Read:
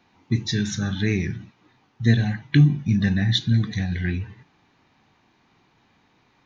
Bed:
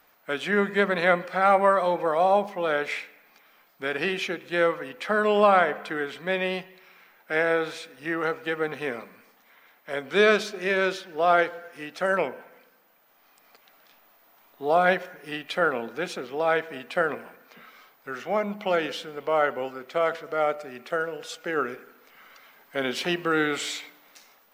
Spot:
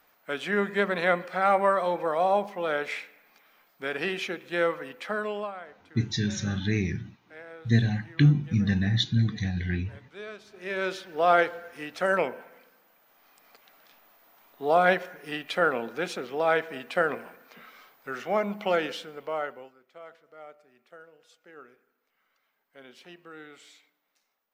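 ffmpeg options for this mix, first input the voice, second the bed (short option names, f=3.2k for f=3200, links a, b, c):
-filter_complex "[0:a]adelay=5650,volume=-4dB[a];[1:a]volume=18.5dB,afade=t=out:st=4.91:d=0.62:silence=0.112202,afade=t=in:st=10.45:d=0.72:silence=0.0841395,afade=t=out:st=18.68:d=1.07:silence=0.0841395[b];[a][b]amix=inputs=2:normalize=0"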